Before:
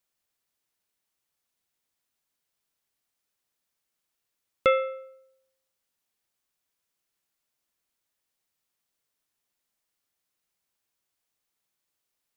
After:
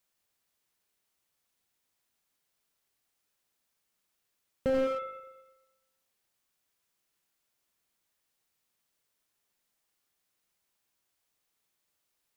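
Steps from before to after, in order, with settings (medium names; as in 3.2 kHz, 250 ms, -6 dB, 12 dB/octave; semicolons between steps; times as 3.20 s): spring tank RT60 1.1 s, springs 36/41 ms, chirp 40 ms, DRR 8.5 dB; slew-rate limiter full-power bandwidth 22 Hz; trim +2 dB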